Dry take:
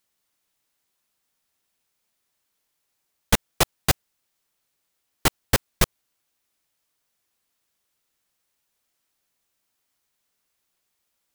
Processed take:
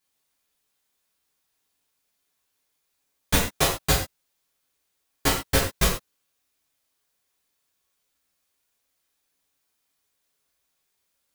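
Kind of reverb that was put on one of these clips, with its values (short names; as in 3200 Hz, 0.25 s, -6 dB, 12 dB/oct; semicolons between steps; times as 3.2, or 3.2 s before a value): non-linear reverb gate 0.16 s falling, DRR -6.5 dB; gain -7 dB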